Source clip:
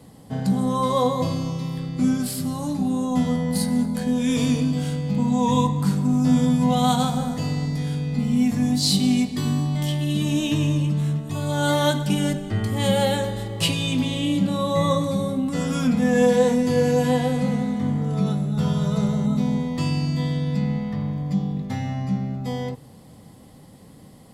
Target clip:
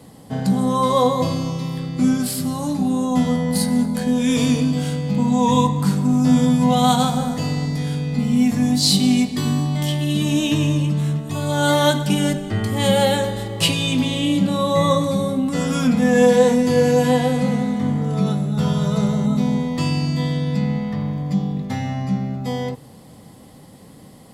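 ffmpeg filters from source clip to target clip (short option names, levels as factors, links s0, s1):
-af "lowshelf=f=140:g=-5,volume=1.68"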